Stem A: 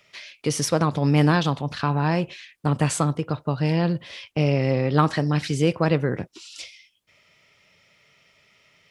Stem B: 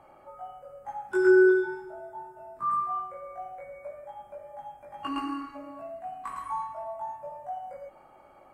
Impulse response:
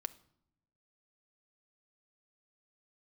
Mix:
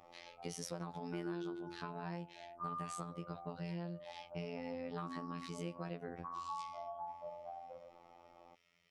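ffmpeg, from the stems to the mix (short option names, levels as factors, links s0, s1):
-filter_complex "[0:a]volume=0.237[s0];[1:a]lowpass=f=1200:w=0.5412,lowpass=f=1200:w=1.3066,volume=0.794[s1];[s0][s1]amix=inputs=2:normalize=0,afftfilt=real='hypot(re,im)*cos(PI*b)':imag='0':win_size=2048:overlap=0.75,acompressor=threshold=0.0112:ratio=6"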